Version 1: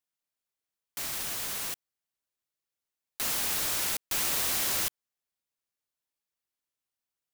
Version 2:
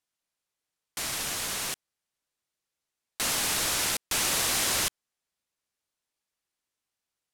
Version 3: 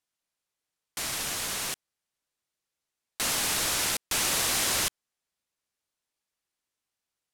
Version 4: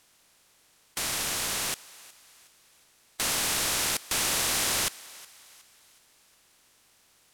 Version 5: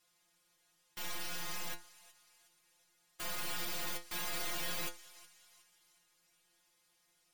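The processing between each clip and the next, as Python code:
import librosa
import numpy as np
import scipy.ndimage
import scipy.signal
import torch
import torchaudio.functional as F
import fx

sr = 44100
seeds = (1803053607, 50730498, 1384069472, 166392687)

y1 = scipy.signal.sosfilt(scipy.signal.butter(2, 11000.0, 'lowpass', fs=sr, output='sos'), x)
y1 = y1 * librosa.db_to_amplitude(5.0)
y2 = y1
y3 = fx.bin_compress(y2, sr, power=0.6)
y3 = fx.echo_thinned(y3, sr, ms=366, feedback_pct=44, hz=580.0, wet_db=-20.0)
y3 = y3 * librosa.db_to_amplitude(-2.5)
y4 = fx.tracing_dist(y3, sr, depth_ms=0.2)
y4 = fx.stiff_resonator(y4, sr, f0_hz=170.0, decay_s=0.25, stiffness=0.002)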